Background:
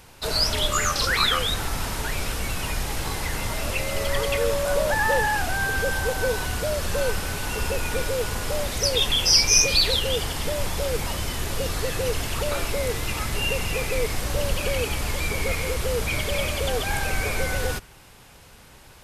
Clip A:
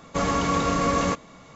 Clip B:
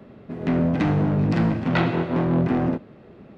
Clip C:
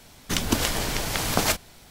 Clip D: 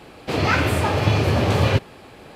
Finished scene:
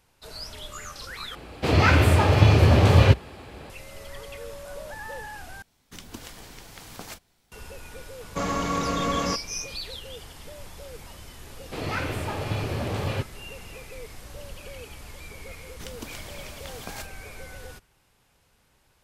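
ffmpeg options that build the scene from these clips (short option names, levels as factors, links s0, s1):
-filter_complex "[4:a]asplit=2[s0][s1];[3:a]asplit=2[s2][s3];[0:a]volume=0.158[s4];[s0]equalizer=f=61:w=1.5:g=12.5[s5];[s2]bandreject=f=610:w=14[s6];[s4]asplit=3[s7][s8][s9];[s7]atrim=end=1.354[s10];[s5]atrim=end=2.35,asetpts=PTS-STARTPTS,volume=0.944[s11];[s8]atrim=start=3.696:end=5.624[s12];[s6]atrim=end=1.9,asetpts=PTS-STARTPTS,volume=0.133[s13];[s9]atrim=start=7.516[s14];[1:a]atrim=end=1.55,asetpts=PTS-STARTPTS,volume=0.668,afade=t=in:d=0.004:c=hsin,afade=t=out:st=1.546:d=0.004:c=hsin,adelay=8210[s15];[s1]atrim=end=2.35,asetpts=PTS-STARTPTS,volume=0.299,afade=t=in:d=0.004:c=hsin,afade=t=out:st=2.346:d=0.004:c=hsin,adelay=11440[s16];[s3]atrim=end=1.9,asetpts=PTS-STARTPTS,volume=0.15,afade=t=in:d=0.004:c=hsin,afade=t=out:st=1.896:d=0.004:c=hsin,adelay=15500[s17];[s10][s11]acrossfade=d=0.004:c1=hsin:c2=hsin[s18];[s18][s12]acrossfade=d=0.004:c1=hsin:c2=hsin[s19];[s19][s13]acrossfade=d=0.004:c1=hsin:c2=hsin[s20];[s20][s14]acrossfade=d=0.004:c1=hsin:c2=hsin[s21];[s21][s15][s16][s17]amix=inputs=4:normalize=0"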